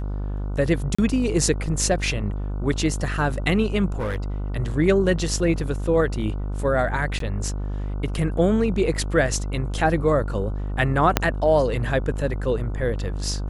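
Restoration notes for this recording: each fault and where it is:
mains buzz 50 Hz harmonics 30 −27 dBFS
0:00.95–0:00.98: drop-out 35 ms
0:03.92–0:04.16: clipping −22 dBFS
0:07.19–0:07.20: drop-out 13 ms
0:08.38: drop-out 3.4 ms
0:11.17: click −1 dBFS

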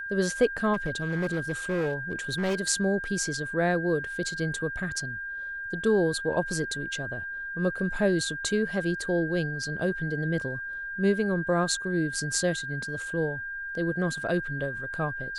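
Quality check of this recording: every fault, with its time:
whistle 1,600 Hz −33 dBFS
0:00.73–0:02.55: clipping −23.5 dBFS

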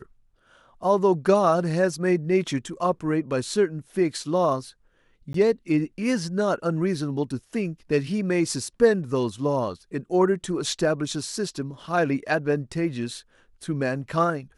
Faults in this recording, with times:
0:05.33–0:05.34: drop-out 13 ms

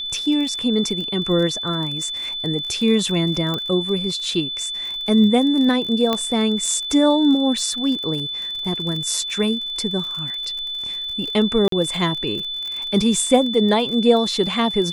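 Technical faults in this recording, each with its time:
surface crackle 39 per second −27 dBFS
whistle 3,500 Hz −25 dBFS
0:03.54: click −12 dBFS
0:06.13: click −7 dBFS
0:11.68–0:11.72: drop-out 43 ms

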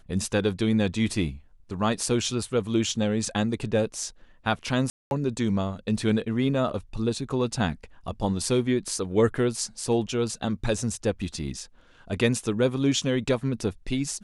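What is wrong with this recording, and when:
0:04.90–0:05.11: drop-out 211 ms

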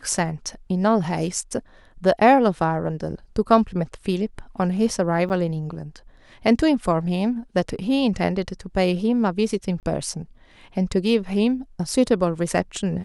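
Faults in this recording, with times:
0:05.29–0:05.30: drop-out 9.4 ms
0:09.80–0:09.83: drop-out 28 ms

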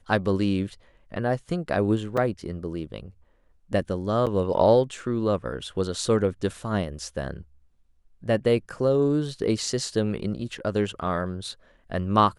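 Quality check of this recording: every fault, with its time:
0:02.17: drop-out 4.4 ms
0:04.26–0:04.27: drop-out 7.4 ms

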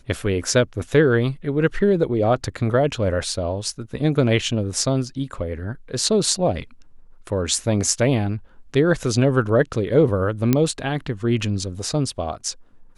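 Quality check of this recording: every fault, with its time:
0:10.53: click −4 dBFS

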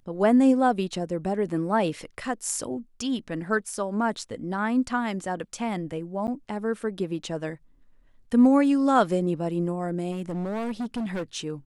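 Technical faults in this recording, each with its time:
0:06.27–0:06.28: drop-out 9.4 ms
0:10.11–0:11.37: clipping −26.5 dBFS

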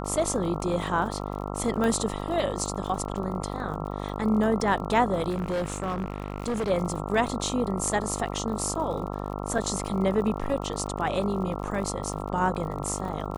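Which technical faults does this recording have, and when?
mains buzz 50 Hz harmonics 27 −33 dBFS
surface crackle 48 per second −35 dBFS
0:01.84: click −16 dBFS
0:05.29–0:06.71: clipping −24.5 dBFS
0:09.58: drop-out 4.7 ms

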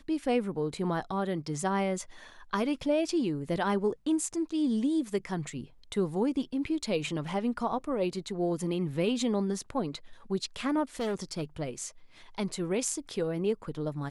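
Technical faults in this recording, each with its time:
0:11.00–0:11.43: clipping −28 dBFS

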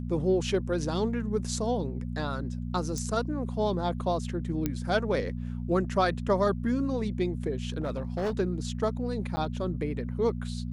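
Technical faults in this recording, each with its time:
mains hum 60 Hz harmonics 4 −34 dBFS
0:02.98: click −22 dBFS
0:04.66: click −14 dBFS
0:07.80–0:08.33: clipping −26 dBFS
0:09.36–0:09.37: drop-out 10 ms

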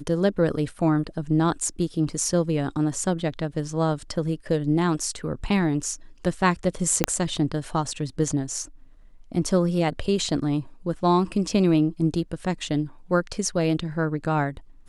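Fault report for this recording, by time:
0:07.04: click −3 dBFS

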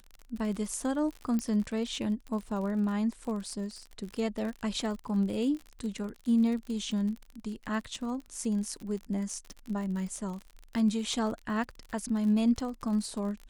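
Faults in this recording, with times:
surface crackle 45 per second −37 dBFS
0:01.39: click −20 dBFS

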